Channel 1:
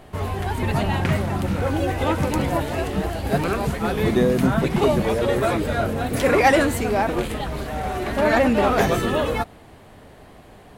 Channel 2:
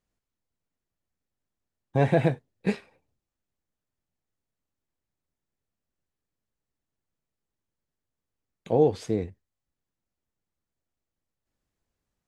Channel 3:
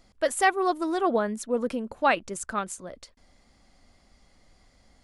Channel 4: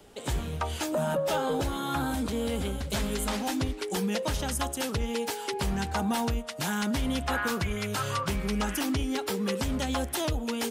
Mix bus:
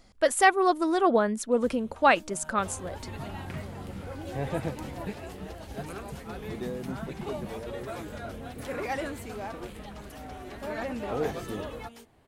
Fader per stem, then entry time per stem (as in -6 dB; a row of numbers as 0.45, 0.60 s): -16.5, -10.5, +2.0, -19.5 dB; 2.45, 2.40, 0.00, 1.35 s